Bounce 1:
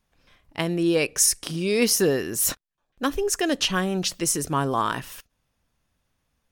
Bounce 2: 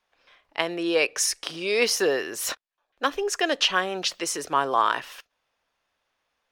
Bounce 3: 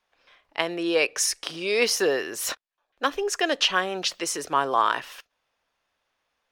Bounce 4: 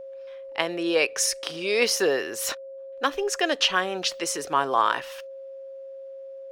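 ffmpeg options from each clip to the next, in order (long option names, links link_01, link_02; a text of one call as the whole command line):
ffmpeg -i in.wav -filter_complex "[0:a]acrossover=split=410 5300:gain=0.0794 1 0.2[link_01][link_02][link_03];[link_01][link_02][link_03]amix=inputs=3:normalize=0,volume=3.5dB" out.wav
ffmpeg -i in.wav -af anull out.wav
ffmpeg -i in.wav -af "aeval=exprs='val(0)+0.0141*sin(2*PI*540*n/s)':channel_layout=same" out.wav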